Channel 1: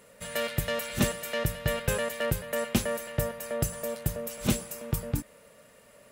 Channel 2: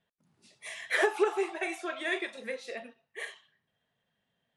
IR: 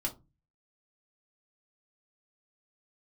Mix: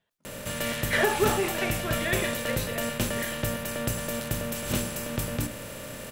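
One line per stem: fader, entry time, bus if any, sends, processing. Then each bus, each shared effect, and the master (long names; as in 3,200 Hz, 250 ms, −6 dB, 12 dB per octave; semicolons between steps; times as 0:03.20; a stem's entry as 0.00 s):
−6.5 dB, 0.25 s, send −8.5 dB, compressor on every frequency bin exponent 0.4
+0.5 dB, 0.00 s, send −14.5 dB, level that may fall only so fast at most 100 dB per second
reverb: on, RT60 0.25 s, pre-delay 3 ms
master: parametric band 230 Hz −2.5 dB 1.2 octaves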